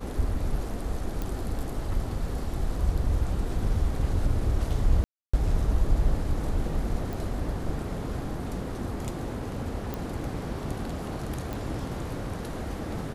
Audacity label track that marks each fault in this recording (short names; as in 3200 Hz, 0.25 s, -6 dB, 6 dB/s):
1.220000	1.220000	pop
5.040000	5.330000	gap 0.295 s
7.130000	7.130000	pop
9.940000	9.940000	pop
11.530000	11.530000	pop